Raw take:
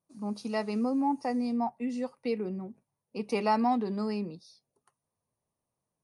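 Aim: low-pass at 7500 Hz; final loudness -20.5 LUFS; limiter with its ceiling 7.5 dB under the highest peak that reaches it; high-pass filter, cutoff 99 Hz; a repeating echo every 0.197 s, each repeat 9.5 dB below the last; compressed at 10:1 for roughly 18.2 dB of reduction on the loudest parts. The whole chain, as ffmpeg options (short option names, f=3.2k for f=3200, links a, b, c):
-af "highpass=99,lowpass=7.5k,acompressor=threshold=-41dB:ratio=10,alimiter=level_in=14.5dB:limit=-24dB:level=0:latency=1,volume=-14.5dB,aecho=1:1:197|394|591|788:0.335|0.111|0.0365|0.012,volume=26dB"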